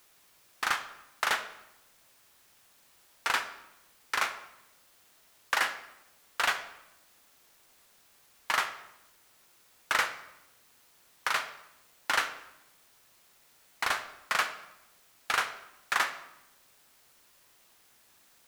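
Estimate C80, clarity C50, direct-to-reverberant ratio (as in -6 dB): 13.5 dB, 11.5 dB, 9.0 dB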